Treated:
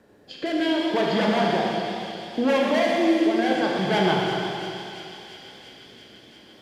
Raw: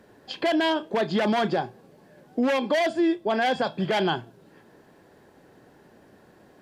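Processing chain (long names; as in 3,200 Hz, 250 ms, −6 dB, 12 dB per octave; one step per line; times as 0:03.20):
harmonic generator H 8 −43 dB, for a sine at −15 dBFS
rotating-speaker cabinet horn 0.7 Hz
on a send: delay with a high-pass on its return 341 ms, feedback 76%, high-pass 3,000 Hz, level −7 dB
on the sum: four-comb reverb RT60 2.4 s, combs from 27 ms, DRR −1.5 dB
feedback echo with a swinging delay time 125 ms, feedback 69%, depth 124 cents, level −10.5 dB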